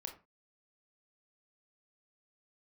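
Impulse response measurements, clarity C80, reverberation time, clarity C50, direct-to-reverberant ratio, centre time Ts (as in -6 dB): 15.5 dB, no single decay rate, 10.0 dB, 3.0 dB, 15 ms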